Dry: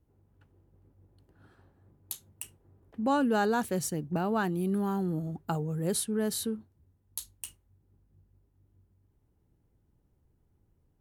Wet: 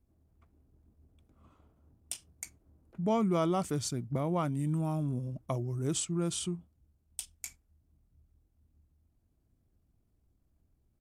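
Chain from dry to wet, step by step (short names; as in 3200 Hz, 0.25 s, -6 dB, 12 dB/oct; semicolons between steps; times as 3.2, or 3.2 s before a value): pitch shift -4 st; gain -2 dB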